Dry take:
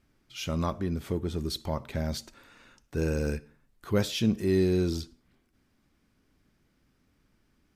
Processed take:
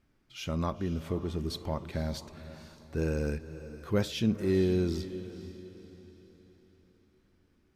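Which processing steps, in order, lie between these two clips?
treble shelf 4.5 kHz -5.5 dB; echo that smears into a reverb 496 ms, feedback 43%, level -13.5 dB; trim -2 dB

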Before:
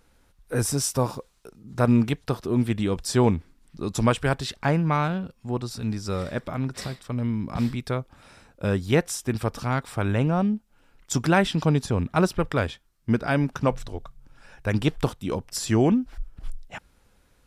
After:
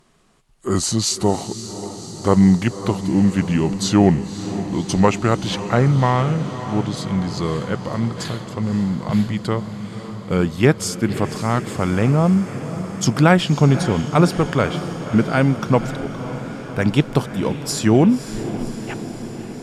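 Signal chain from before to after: gliding tape speed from 78% -> 100%; resonant low shelf 100 Hz -8.5 dB, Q 1.5; echo that smears into a reverb 556 ms, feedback 70%, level -12 dB; trim +5.5 dB

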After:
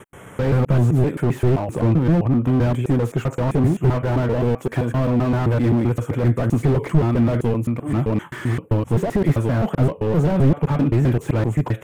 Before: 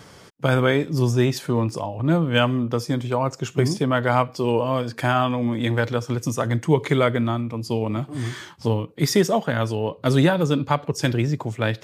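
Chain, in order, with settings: slices played last to first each 130 ms, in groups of 3; Butterworth band-stop 4.7 kHz, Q 0.93; slew-rate limiter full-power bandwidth 25 Hz; trim +6.5 dB

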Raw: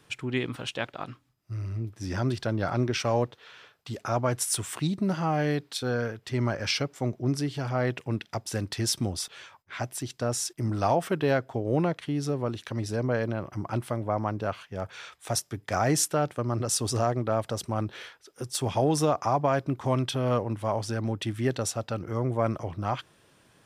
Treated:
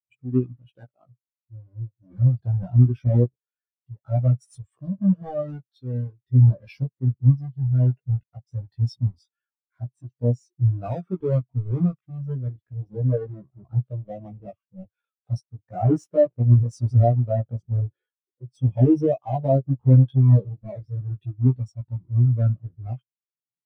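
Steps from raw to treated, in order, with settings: square wave that keeps the level; chorus voices 2, 0.15 Hz, delay 16 ms, depth 1 ms; spectral contrast expander 2.5:1; trim +5.5 dB

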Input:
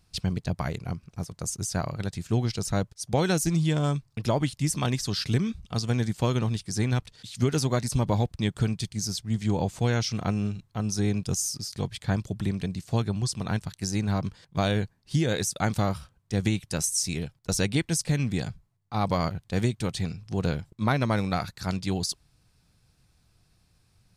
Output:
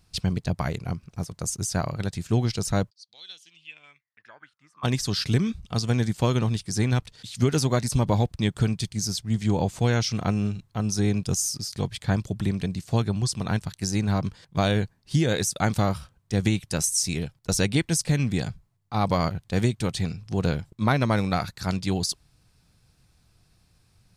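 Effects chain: 2.89–4.83 s: band-pass filter 4.8 kHz -> 1.1 kHz, Q 13; trim +2.5 dB

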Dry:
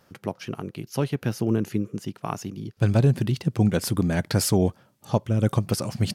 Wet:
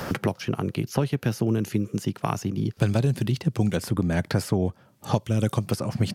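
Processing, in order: three bands compressed up and down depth 100%; trim -1.5 dB

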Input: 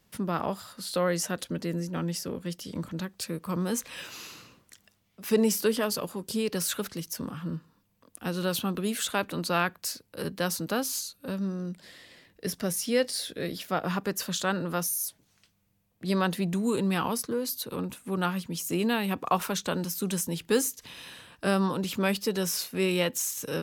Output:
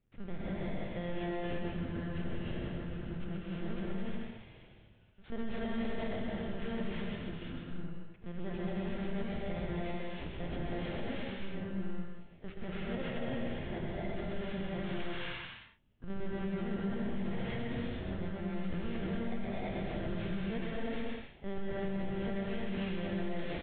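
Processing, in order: bit-reversed sample order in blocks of 32 samples; LPC vocoder at 8 kHz pitch kept; treble shelf 2.1 kHz -11 dB; bouncing-ball echo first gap 130 ms, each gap 0.65×, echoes 5; gated-style reverb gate 380 ms rising, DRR -6 dB; peak limiter -19 dBFS, peak gain reduction 8.5 dB; peaking EQ 920 Hz -6 dB 0.86 oct; trim -8 dB

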